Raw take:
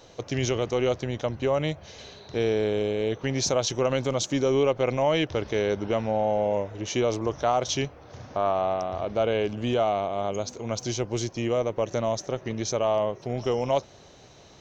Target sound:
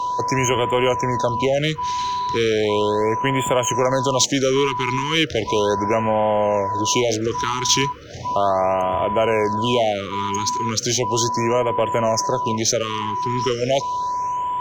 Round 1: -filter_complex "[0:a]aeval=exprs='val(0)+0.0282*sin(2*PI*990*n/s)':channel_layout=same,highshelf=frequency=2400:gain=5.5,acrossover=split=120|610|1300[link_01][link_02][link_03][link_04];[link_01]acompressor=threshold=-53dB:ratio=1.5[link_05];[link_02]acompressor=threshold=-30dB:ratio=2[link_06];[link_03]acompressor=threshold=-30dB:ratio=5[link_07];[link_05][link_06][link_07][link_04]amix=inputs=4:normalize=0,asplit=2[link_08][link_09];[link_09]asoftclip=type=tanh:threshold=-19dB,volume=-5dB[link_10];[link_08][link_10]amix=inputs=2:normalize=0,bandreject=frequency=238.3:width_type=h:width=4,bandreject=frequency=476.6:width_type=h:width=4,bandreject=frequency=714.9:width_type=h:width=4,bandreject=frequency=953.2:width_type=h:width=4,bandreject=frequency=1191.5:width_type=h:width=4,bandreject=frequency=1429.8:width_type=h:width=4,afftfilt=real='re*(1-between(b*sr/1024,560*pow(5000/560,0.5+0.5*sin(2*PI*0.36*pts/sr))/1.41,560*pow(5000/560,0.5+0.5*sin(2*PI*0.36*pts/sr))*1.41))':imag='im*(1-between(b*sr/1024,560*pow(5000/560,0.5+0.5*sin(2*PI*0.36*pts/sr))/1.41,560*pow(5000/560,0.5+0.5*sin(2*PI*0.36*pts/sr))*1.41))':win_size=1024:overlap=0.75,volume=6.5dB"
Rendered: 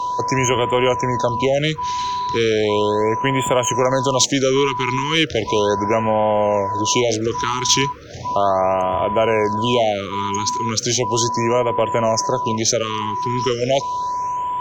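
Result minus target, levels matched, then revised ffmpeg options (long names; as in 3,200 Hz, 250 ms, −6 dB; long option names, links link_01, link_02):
soft clipping: distortion −11 dB
-filter_complex "[0:a]aeval=exprs='val(0)+0.0282*sin(2*PI*990*n/s)':channel_layout=same,highshelf=frequency=2400:gain=5.5,acrossover=split=120|610|1300[link_01][link_02][link_03][link_04];[link_01]acompressor=threshold=-53dB:ratio=1.5[link_05];[link_02]acompressor=threshold=-30dB:ratio=2[link_06];[link_03]acompressor=threshold=-30dB:ratio=5[link_07];[link_05][link_06][link_07][link_04]amix=inputs=4:normalize=0,asplit=2[link_08][link_09];[link_09]asoftclip=type=tanh:threshold=-30.5dB,volume=-5dB[link_10];[link_08][link_10]amix=inputs=2:normalize=0,bandreject=frequency=238.3:width_type=h:width=4,bandreject=frequency=476.6:width_type=h:width=4,bandreject=frequency=714.9:width_type=h:width=4,bandreject=frequency=953.2:width_type=h:width=4,bandreject=frequency=1191.5:width_type=h:width=4,bandreject=frequency=1429.8:width_type=h:width=4,afftfilt=real='re*(1-between(b*sr/1024,560*pow(5000/560,0.5+0.5*sin(2*PI*0.36*pts/sr))/1.41,560*pow(5000/560,0.5+0.5*sin(2*PI*0.36*pts/sr))*1.41))':imag='im*(1-between(b*sr/1024,560*pow(5000/560,0.5+0.5*sin(2*PI*0.36*pts/sr))/1.41,560*pow(5000/560,0.5+0.5*sin(2*PI*0.36*pts/sr))*1.41))':win_size=1024:overlap=0.75,volume=6.5dB"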